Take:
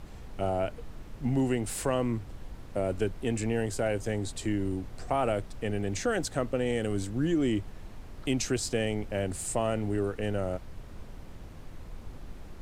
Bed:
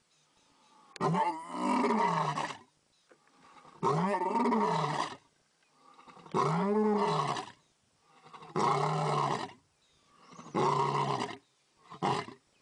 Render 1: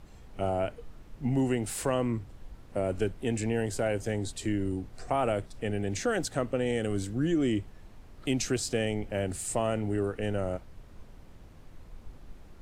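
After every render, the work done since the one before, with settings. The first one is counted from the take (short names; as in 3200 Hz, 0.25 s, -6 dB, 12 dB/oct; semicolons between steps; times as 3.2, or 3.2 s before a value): noise print and reduce 6 dB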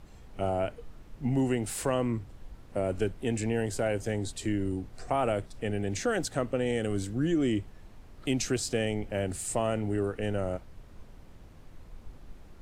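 nothing audible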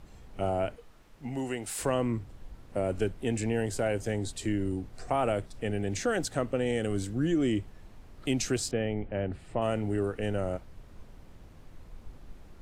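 0.76–1.79 low shelf 370 Hz -11 dB; 8.71–9.62 air absorption 390 m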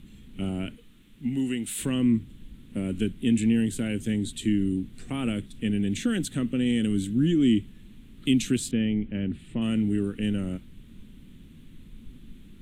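EQ curve 100 Hz 0 dB, 230 Hz +12 dB, 690 Hz -17 dB, 3500 Hz +9 dB, 5000 Hz -8 dB, 8700 Hz +4 dB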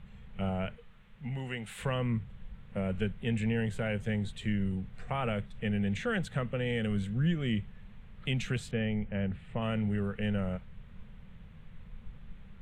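EQ curve 130 Hz 0 dB, 200 Hz -4 dB, 290 Hz -24 dB, 470 Hz +3 dB, 780 Hz +8 dB, 2000 Hz +2 dB, 3400 Hz -8 dB, 5400 Hz -11 dB, 10000 Hz -19 dB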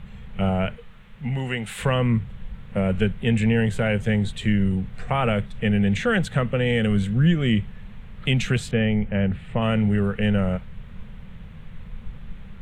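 gain +10.5 dB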